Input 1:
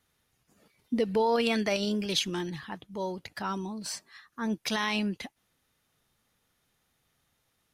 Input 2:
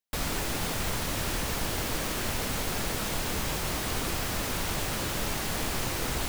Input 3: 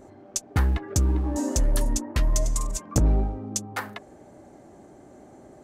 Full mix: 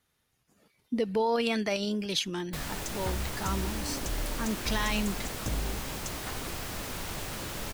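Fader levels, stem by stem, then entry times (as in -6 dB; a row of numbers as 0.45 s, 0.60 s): -1.5 dB, -6.0 dB, -13.0 dB; 0.00 s, 2.40 s, 2.50 s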